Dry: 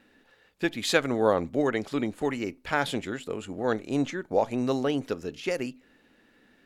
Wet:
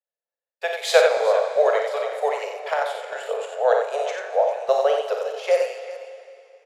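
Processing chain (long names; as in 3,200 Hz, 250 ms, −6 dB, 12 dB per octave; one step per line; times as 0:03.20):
Butterworth high-pass 440 Hz 96 dB per octave
noise gate −51 dBFS, range −43 dB
parametric band 640 Hz +14.5 dB 0.81 octaves
square-wave tremolo 0.64 Hz, depth 60%, duty 75%
multi-tap delay 41/57/90/397 ms −10/−8/−5.5/−15 dB
convolution reverb RT60 2.6 s, pre-delay 4 ms, DRR 7.5 dB
level +1 dB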